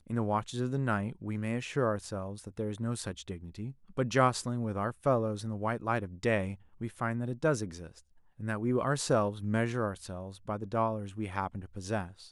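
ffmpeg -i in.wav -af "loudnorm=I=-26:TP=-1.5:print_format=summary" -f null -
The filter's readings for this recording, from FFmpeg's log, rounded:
Input Integrated:    -33.5 LUFS
Input True Peak:     -12.2 dBTP
Input LRA:             2.9 LU
Input Threshold:     -43.6 LUFS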